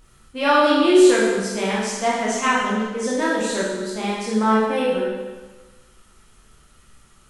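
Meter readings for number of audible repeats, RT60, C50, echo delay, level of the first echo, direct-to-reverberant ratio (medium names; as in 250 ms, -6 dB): no echo, 1.3 s, -0.5 dB, no echo, no echo, -7.0 dB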